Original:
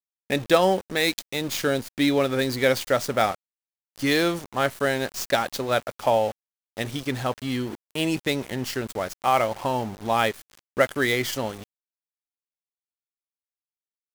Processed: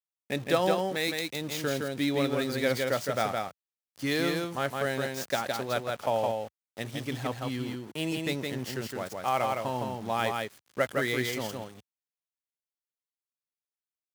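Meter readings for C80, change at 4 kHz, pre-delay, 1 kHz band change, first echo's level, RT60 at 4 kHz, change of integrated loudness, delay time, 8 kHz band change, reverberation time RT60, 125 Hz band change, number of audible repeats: no reverb, -6.0 dB, no reverb, -6.0 dB, -3.5 dB, no reverb, -6.0 dB, 164 ms, -6.0 dB, no reverb, -3.5 dB, 1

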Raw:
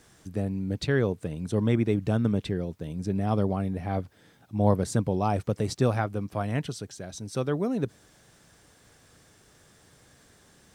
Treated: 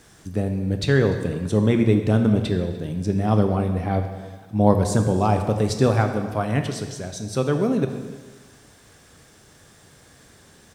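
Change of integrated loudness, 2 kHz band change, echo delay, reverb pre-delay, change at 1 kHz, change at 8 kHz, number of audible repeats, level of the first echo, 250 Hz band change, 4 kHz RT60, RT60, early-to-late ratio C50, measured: +6.5 dB, +6.5 dB, 295 ms, 6 ms, +6.5 dB, +6.5 dB, 1, -22.0 dB, +6.5 dB, 1.3 s, 1.4 s, 7.5 dB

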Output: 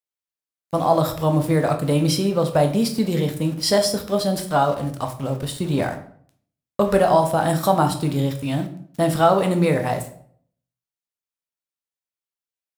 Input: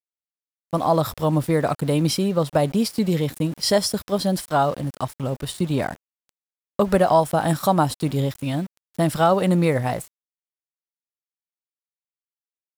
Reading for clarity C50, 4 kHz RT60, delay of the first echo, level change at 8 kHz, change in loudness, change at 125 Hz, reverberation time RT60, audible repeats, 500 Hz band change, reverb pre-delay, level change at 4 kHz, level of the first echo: 11.0 dB, 0.40 s, no echo, +1.0 dB, +1.0 dB, +1.0 dB, 0.55 s, no echo, +1.5 dB, 9 ms, +1.0 dB, no echo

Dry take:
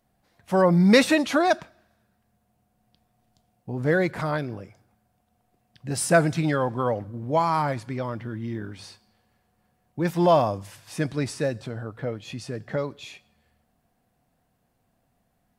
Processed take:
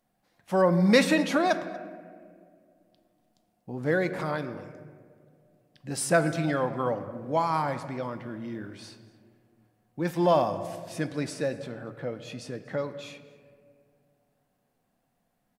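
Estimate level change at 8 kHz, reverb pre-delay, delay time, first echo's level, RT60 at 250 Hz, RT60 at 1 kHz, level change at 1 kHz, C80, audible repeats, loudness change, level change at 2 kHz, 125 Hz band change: -3.5 dB, 4 ms, 238 ms, -22.0 dB, 2.6 s, 1.6 s, -3.5 dB, 12.5 dB, 1, -3.5 dB, -3.0 dB, -5.5 dB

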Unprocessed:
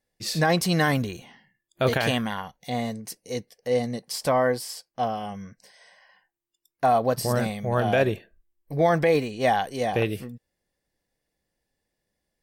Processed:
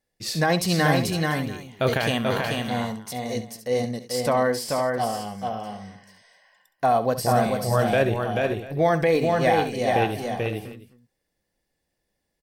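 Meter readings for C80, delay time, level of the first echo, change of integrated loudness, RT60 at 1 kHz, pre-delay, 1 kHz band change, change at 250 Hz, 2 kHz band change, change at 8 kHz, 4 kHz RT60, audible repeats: no reverb, 67 ms, -13.5 dB, +1.5 dB, no reverb, no reverb, +2.0 dB, +2.0 dB, +2.0 dB, +2.0 dB, no reverb, 4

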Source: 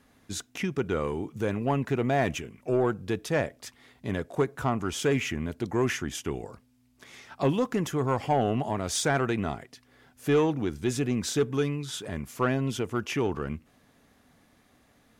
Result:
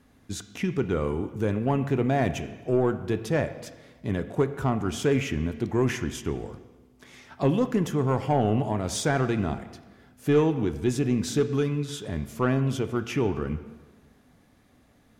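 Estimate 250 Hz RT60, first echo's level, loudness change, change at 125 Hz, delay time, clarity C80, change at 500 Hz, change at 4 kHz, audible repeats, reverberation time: 1.2 s, no echo, +2.0 dB, +4.0 dB, no echo, 13.5 dB, +1.5 dB, -1.5 dB, no echo, 1.3 s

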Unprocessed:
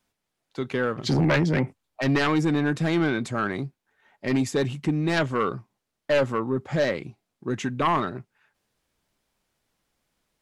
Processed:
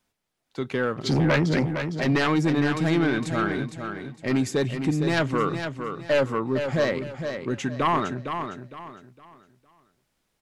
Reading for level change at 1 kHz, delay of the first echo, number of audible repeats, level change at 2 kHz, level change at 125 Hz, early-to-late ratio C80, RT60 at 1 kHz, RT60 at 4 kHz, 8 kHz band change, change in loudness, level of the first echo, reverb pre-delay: +1.0 dB, 459 ms, 3, +1.0 dB, +0.5 dB, no reverb, no reverb, no reverb, +1.0 dB, 0.0 dB, -7.5 dB, no reverb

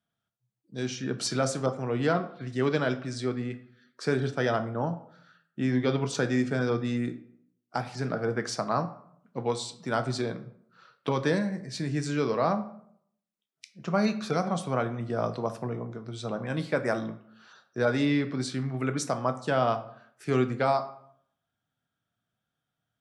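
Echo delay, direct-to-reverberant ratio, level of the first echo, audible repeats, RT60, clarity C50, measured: no echo, 8.0 dB, no echo, no echo, 0.70 s, 13.5 dB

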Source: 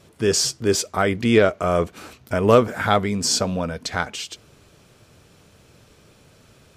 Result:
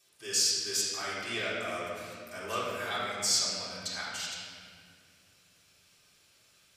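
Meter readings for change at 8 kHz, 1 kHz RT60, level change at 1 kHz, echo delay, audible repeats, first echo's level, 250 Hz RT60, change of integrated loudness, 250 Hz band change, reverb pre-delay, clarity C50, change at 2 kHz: -4.5 dB, 1.9 s, -14.0 dB, no echo, no echo, no echo, 3.5 s, -10.5 dB, -22.5 dB, 3 ms, -2.0 dB, -9.0 dB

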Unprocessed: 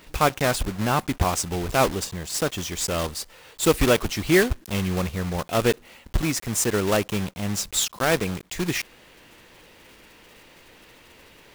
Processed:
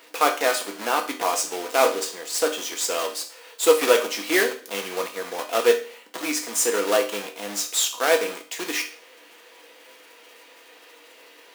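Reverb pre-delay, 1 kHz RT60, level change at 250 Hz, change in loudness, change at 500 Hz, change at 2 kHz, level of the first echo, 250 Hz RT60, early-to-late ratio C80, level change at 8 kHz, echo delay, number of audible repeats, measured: 4 ms, 0.45 s, -7.0 dB, +1.0 dB, +2.5 dB, +1.5 dB, no echo, 0.40 s, 15.5 dB, +2.0 dB, no echo, no echo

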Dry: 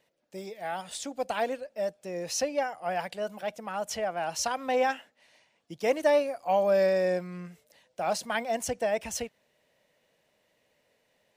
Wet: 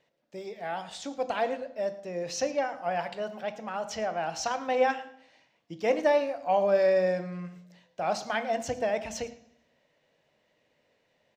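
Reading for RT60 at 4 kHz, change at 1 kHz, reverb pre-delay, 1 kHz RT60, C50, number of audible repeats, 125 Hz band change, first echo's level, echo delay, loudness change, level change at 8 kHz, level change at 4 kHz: 0.70 s, +0.5 dB, 3 ms, 0.65 s, 13.0 dB, 1, +1.0 dB, -19.5 dB, 111 ms, 0.0 dB, -5.0 dB, -2.0 dB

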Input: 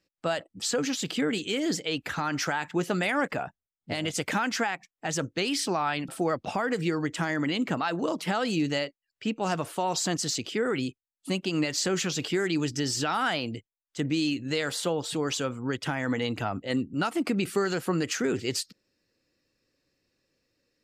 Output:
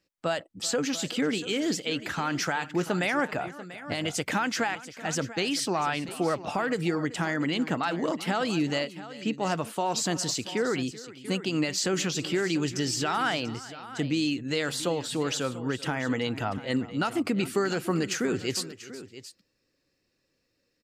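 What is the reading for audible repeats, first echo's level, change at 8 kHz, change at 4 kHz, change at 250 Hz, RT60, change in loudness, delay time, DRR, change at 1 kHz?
2, -18.5 dB, 0.0 dB, 0.0 dB, 0.0 dB, no reverb, 0.0 dB, 385 ms, no reverb, 0.0 dB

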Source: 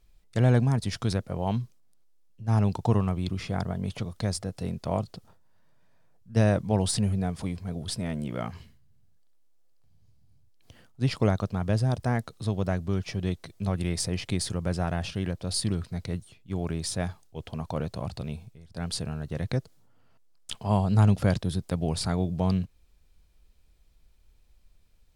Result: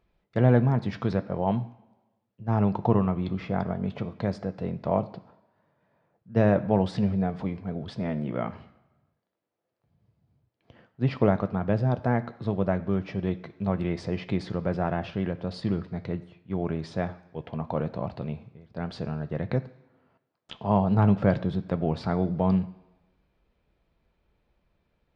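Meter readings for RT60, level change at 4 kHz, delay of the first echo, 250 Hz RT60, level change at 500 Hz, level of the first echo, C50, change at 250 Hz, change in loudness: 1.1 s, -9.5 dB, no echo, 1.0 s, +4.0 dB, no echo, 16.0 dB, +2.5 dB, +1.0 dB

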